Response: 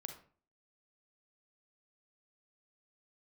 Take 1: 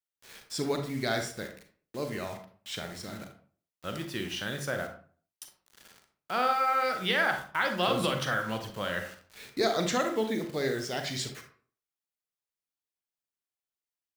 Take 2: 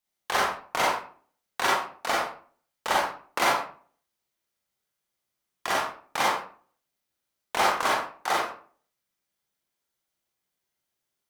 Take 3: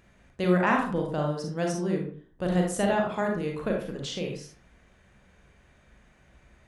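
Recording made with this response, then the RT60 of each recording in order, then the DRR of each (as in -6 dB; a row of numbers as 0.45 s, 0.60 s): 1; 0.45 s, 0.45 s, 0.45 s; 5.0 dB, -4.5 dB, 0.0 dB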